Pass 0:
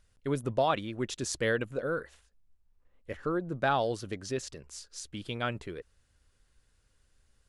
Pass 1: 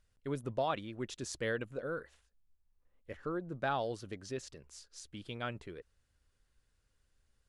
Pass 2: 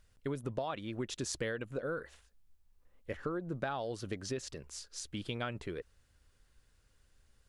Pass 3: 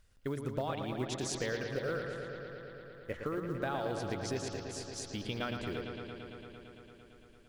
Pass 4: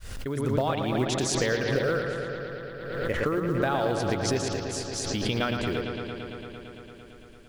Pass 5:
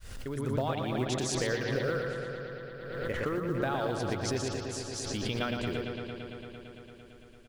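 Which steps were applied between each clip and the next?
high-shelf EQ 8,000 Hz −4 dB; level −6.5 dB
downward compressor 10 to 1, threshold −40 dBFS, peak gain reduction 12 dB; level +7 dB
floating-point word with a short mantissa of 4 bits; on a send: bucket-brigade delay 113 ms, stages 4,096, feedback 84%, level −7 dB
fade in at the beginning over 0.51 s; background raised ahead of every attack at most 42 dB per second; level +9 dB
single-tap delay 121 ms −9.5 dB; level −5.5 dB

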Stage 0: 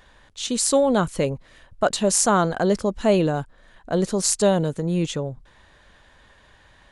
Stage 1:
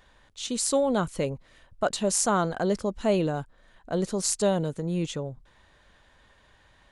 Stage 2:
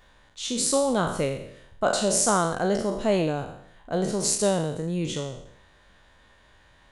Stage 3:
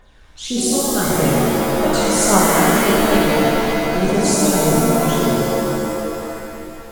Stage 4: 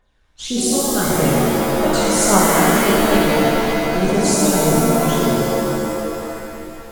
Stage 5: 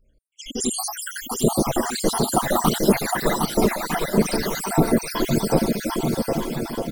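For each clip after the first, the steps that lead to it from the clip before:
notch filter 1,700 Hz, Q 29; level −5.5 dB
peak hold with a decay on every bin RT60 0.70 s
phase shifter 1.7 Hz, delay 1 ms, feedback 64%; reverb with rising layers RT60 2.9 s, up +7 semitones, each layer −2 dB, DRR −3.5 dB; level −1 dB
noise gate −39 dBFS, range −13 dB
time-frequency cells dropped at random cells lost 76%; all-pass phaser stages 12, 1.5 Hz, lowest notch 130–2,800 Hz; bouncing-ball delay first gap 760 ms, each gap 0.65×, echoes 5; level +1.5 dB

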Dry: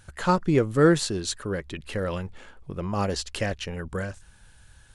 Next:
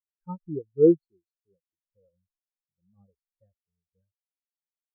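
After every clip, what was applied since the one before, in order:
every bin expanded away from the loudest bin 4 to 1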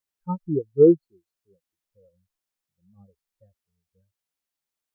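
downward compressor, threshold −18 dBFS, peak gain reduction 6.5 dB
level +8 dB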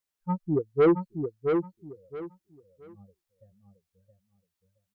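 soft clipping −15.5 dBFS, distortion −10 dB
repeating echo 671 ms, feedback 24%, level −5.5 dB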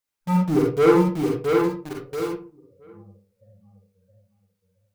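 in parallel at −6 dB: log-companded quantiser 2 bits
on the sum: convolution reverb RT60 0.40 s, pre-delay 39 ms, DRR −2 dB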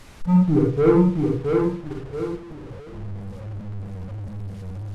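linear delta modulator 64 kbit/s, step −32.5 dBFS
RIAA equalisation playback
level −4.5 dB

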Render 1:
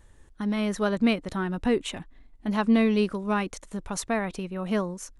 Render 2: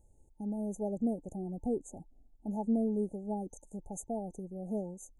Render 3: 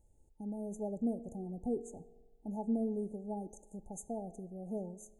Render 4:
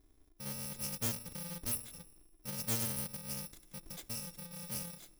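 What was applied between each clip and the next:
brick-wall band-stop 890–6,200 Hz; level −9 dB
convolution reverb RT60 1.2 s, pre-delay 3 ms, DRR 14.5 dB; level −3.5 dB
samples in bit-reversed order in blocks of 128 samples; hollow resonant body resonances 320/3,600 Hz, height 10 dB, ringing for 30 ms; highs frequency-modulated by the lows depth 0.48 ms

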